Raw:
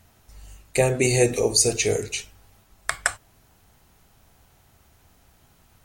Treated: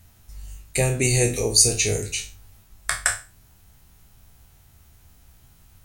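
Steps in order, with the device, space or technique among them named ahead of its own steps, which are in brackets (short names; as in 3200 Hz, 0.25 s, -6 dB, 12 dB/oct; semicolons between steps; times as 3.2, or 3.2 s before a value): spectral trails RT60 0.32 s; smiley-face EQ (low shelf 150 Hz +8 dB; bell 530 Hz -5 dB 2.6 oct; high shelf 7400 Hz +5.5 dB); gain -1 dB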